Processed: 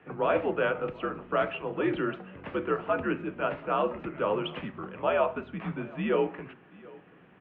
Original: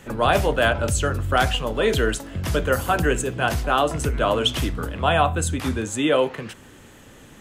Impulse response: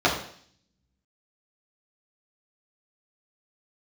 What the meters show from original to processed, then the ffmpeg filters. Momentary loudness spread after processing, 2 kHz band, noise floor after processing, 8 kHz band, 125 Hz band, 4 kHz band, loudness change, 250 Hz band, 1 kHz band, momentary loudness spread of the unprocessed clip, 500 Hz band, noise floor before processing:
12 LU, -10.5 dB, -56 dBFS, under -40 dB, -15.5 dB, -17.5 dB, -8.5 dB, -6.5 dB, -9.0 dB, 6 LU, -6.0 dB, -47 dBFS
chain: -filter_complex "[0:a]aecho=1:1:732:0.075,asplit=2[a][b];[1:a]atrim=start_sample=2205[c];[b][c]afir=irnorm=-1:irlink=0,volume=-29.5dB[d];[a][d]amix=inputs=2:normalize=0,highpass=f=240:t=q:w=0.5412,highpass=f=240:t=q:w=1.307,lowpass=f=2.7k:t=q:w=0.5176,lowpass=f=2.7k:t=q:w=0.7071,lowpass=f=2.7k:t=q:w=1.932,afreqshift=-88,volume=-8dB"

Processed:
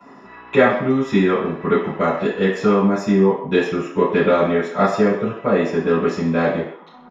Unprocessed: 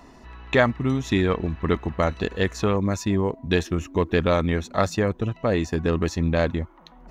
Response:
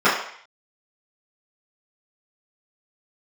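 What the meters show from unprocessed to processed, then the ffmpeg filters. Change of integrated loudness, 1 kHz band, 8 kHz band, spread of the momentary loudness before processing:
+5.5 dB, +6.5 dB, n/a, 4 LU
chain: -filter_complex "[0:a]acrossover=split=230|1100|1700[a][b][c][d];[c]acompressor=threshold=-46dB:ratio=6[e];[a][b][e][d]amix=inputs=4:normalize=0,asplit=2[f][g];[g]adelay=130,highpass=300,lowpass=3.4k,asoftclip=type=hard:threshold=-15.5dB,volume=-15dB[h];[f][h]amix=inputs=2:normalize=0[i];[1:a]atrim=start_sample=2205,afade=t=out:st=0.35:d=0.01,atrim=end_sample=15876[j];[i][j]afir=irnorm=-1:irlink=0,volume=-16dB"

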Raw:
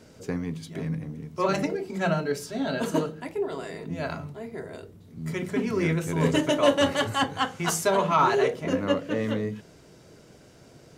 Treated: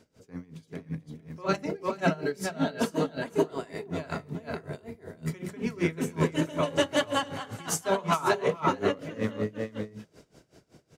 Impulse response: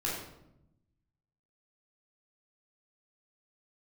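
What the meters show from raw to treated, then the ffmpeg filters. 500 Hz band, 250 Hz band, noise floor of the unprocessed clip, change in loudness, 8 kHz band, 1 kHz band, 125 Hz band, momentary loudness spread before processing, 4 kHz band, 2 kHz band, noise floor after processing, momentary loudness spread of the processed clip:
-3.5 dB, -3.0 dB, -53 dBFS, -3.5 dB, -2.5 dB, -4.0 dB, -3.5 dB, 15 LU, -4.0 dB, -3.0 dB, -67 dBFS, 15 LU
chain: -filter_complex "[0:a]dynaudnorm=f=280:g=9:m=11dB,asplit=2[a][b];[b]aecho=0:1:441:0.596[c];[a][c]amix=inputs=2:normalize=0,aeval=exprs='val(0)*pow(10,-21*(0.5-0.5*cos(2*PI*5.3*n/s))/20)':c=same,volume=-6dB"

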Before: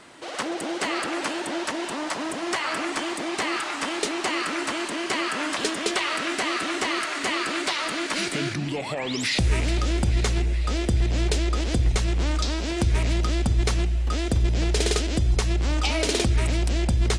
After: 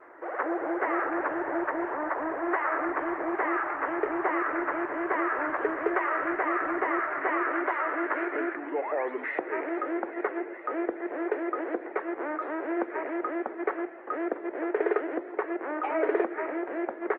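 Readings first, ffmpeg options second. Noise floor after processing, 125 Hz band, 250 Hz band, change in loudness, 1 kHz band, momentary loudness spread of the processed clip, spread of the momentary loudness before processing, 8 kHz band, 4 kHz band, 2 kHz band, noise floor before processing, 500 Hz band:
-42 dBFS, under -35 dB, -3.0 dB, -5.0 dB, +1.0 dB, 5 LU, 5 LU, under -40 dB, under -30 dB, -2.5 dB, -32 dBFS, +1.0 dB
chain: -af "asuperpass=centerf=790:order=12:qfactor=0.5,aecho=1:1:533|1066:0.0944|0.0142,volume=1.5dB" -ar 48000 -c:a libopus -b:a 20k

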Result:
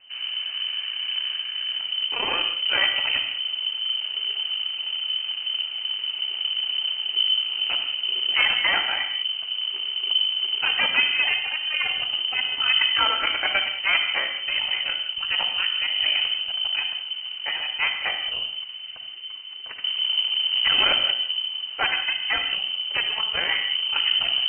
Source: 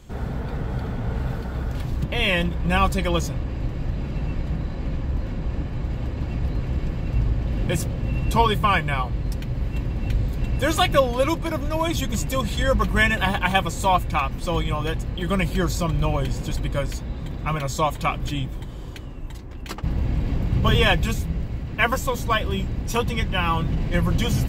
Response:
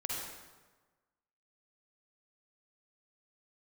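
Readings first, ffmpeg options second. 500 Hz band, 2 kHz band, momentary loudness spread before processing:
-14.5 dB, +3.0 dB, 10 LU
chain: -filter_complex "[0:a]aeval=exprs='0.631*(cos(1*acos(clip(val(0)/0.631,-1,1)))-cos(1*PI/2))+0.141*(cos(6*acos(clip(val(0)/0.631,-1,1)))-cos(6*PI/2))':c=same,asplit=2[a][b];[1:a]atrim=start_sample=2205,afade=t=out:st=0.26:d=0.01,atrim=end_sample=11907[c];[b][c]afir=irnorm=-1:irlink=0,volume=-3.5dB[d];[a][d]amix=inputs=2:normalize=0,lowpass=f=2.6k:t=q:w=0.5098,lowpass=f=2.6k:t=q:w=0.6013,lowpass=f=2.6k:t=q:w=0.9,lowpass=f=2.6k:t=q:w=2.563,afreqshift=-3100,volume=-8.5dB"

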